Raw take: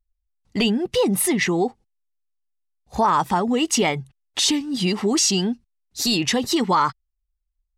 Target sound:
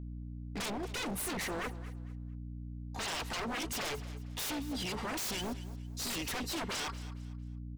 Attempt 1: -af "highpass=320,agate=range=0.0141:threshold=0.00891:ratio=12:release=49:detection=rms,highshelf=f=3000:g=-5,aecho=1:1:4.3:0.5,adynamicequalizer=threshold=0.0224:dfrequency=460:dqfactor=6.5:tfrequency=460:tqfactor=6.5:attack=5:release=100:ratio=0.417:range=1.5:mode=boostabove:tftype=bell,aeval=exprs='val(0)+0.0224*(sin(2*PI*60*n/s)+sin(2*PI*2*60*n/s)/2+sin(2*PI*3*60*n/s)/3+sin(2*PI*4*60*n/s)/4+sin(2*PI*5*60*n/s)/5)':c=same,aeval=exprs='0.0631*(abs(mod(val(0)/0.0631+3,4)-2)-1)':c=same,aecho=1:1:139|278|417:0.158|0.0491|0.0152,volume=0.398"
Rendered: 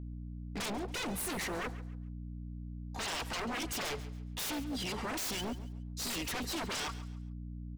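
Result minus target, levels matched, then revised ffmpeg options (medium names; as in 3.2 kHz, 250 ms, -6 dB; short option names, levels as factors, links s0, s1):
echo 87 ms early
-af "highpass=320,agate=range=0.0141:threshold=0.00891:ratio=12:release=49:detection=rms,highshelf=f=3000:g=-5,aecho=1:1:4.3:0.5,adynamicequalizer=threshold=0.0224:dfrequency=460:dqfactor=6.5:tfrequency=460:tqfactor=6.5:attack=5:release=100:ratio=0.417:range=1.5:mode=boostabove:tftype=bell,aeval=exprs='val(0)+0.0224*(sin(2*PI*60*n/s)+sin(2*PI*2*60*n/s)/2+sin(2*PI*3*60*n/s)/3+sin(2*PI*4*60*n/s)/4+sin(2*PI*5*60*n/s)/5)':c=same,aeval=exprs='0.0631*(abs(mod(val(0)/0.0631+3,4)-2)-1)':c=same,aecho=1:1:226|452|678:0.158|0.0491|0.0152,volume=0.398"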